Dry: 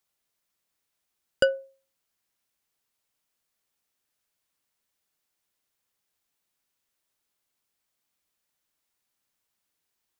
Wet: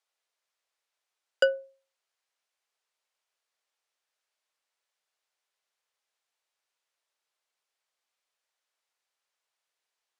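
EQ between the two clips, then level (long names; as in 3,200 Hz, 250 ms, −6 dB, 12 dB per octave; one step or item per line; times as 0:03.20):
high-pass filter 460 Hz 24 dB per octave
high-frequency loss of the air 56 metres
0.0 dB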